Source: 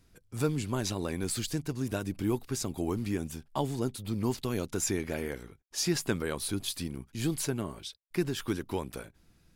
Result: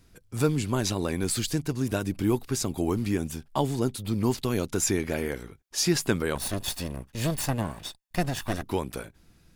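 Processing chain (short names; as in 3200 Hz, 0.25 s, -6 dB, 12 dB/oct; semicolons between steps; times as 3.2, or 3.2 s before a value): 6.35–8.63 minimum comb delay 1.1 ms; gain +5 dB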